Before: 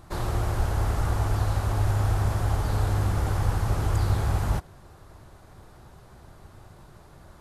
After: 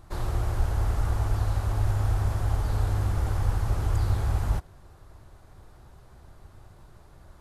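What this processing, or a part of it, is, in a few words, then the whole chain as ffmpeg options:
low shelf boost with a cut just above: -af "lowshelf=f=85:g=7.5,equalizer=f=170:t=o:w=0.89:g=-2.5,volume=0.596"

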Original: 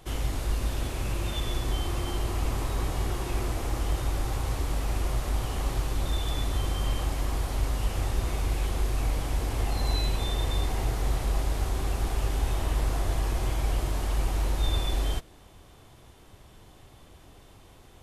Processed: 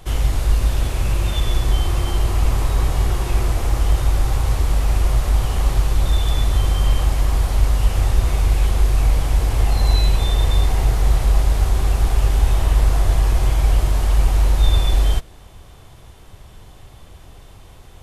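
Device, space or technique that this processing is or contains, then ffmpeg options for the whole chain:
low shelf boost with a cut just above: -af "lowshelf=f=94:g=6.5,equalizer=f=290:t=o:w=0.77:g=-4.5,volume=2.24"

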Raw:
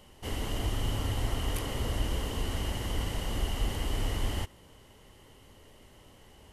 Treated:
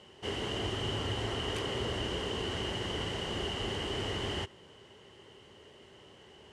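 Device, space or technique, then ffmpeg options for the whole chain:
car door speaker: -af "highpass=110,equalizer=f=270:t=q:w=4:g=-4,equalizer=f=390:t=q:w=4:g=8,equalizer=f=1600:t=q:w=4:g=4,equalizer=f=3000:t=q:w=4:g=5,lowpass=f=7800:w=0.5412,lowpass=f=7800:w=1.3066,equalizer=f=6700:w=1.5:g=-2.5"

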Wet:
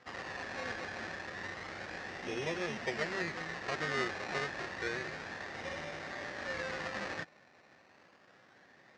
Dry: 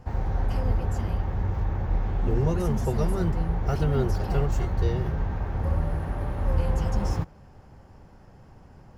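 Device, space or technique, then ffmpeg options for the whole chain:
circuit-bent sampling toy: -af "acrusher=samples=21:mix=1:aa=0.000001:lfo=1:lforange=12.6:lforate=0.3,highpass=400,equalizer=f=430:t=q:w=4:g=-4,equalizer=f=880:t=q:w=4:g=-6,equalizer=f=1800:t=q:w=4:g=10,equalizer=f=3200:t=q:w=4:g=-4,lowpass=f=5700:w=0.5412,lowpass=f=5700:w=1.3066,volume=0.668"

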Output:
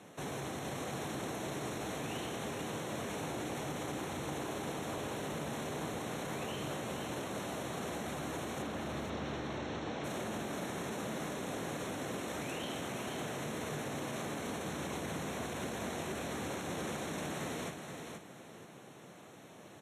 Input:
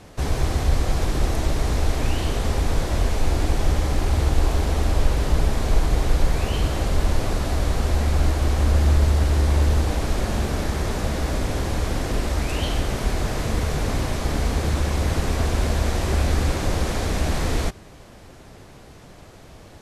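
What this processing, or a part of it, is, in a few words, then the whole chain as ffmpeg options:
PA system with an anti-feedback notch: -filter_complex "[0:a]highpass=f=140:w=0.5412,highpass=f=140:w=1.3066,asuperstop=centerf=4800:order=4:qfactor=3.6,alimiter=level_in=1.06:limit=0.0631:level=0:latency=1:release=32,volume=0.944,asettb=1/sr,asplit=3[s0][s1][s2];[s0]atrim=end=8.624[s3];[s1]atrim=start=8.62:end=10.04,asetpts=PTS-STARTPTS,afade=t=in:d=0.004:c=qsin,afade=t=out:st=1.416:d=0.004:c=qsin,lowpass=f=5500:w=0.5412,lowpass=f=5500:w=1.3066[s4];[s2]atrim=start=10.036[s5];[s3][s4]acrossfade=d=0.004:c1=hsin:c2=qsin[s6];[s6][s5]acrossfade=d=0.004:c1=qsin:c2=hsin,aecho=1:1:476|952|1428:0.501|0.13|0.0339,volume=0.422"

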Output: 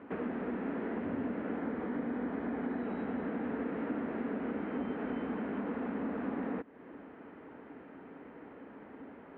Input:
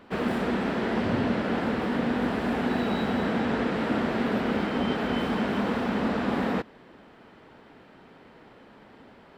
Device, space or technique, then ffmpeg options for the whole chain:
bass amplifier: -filter_complex "[0:a]acompressor=threshold=0.0112:ratio=3,highpass=61,equalizer=f=120:t=q:w=4:g=-8,equalizer=f=280:t=q:w=4:g=9,equalizer=f=450:t=q:w=4:g=4,lowpass=f=2300:w=0.5412,lowpass=f=2300:w=1.3066,asettb=1/sr,asplit=3[s0][s1][s2];[s0]atrim=end=1.574[s3];[s1]atrim=start=1.57:end=2.85,asetpts=PTS-STARTPTS,afade=t=in:d=0.004:c=qsin,afade=t=out:st=1.276:d=0.004:c=qsin,bandreject=f=2700:w=11[s4];[s2]atrim=start=2.846[s5];[s3][s4]acrossfade=d=0.004:c1=hsin:c2=qsin[s6];[s6][s5]acrossfade=d=0.004:c1=qsin:c2=hsin,volume=0.841"

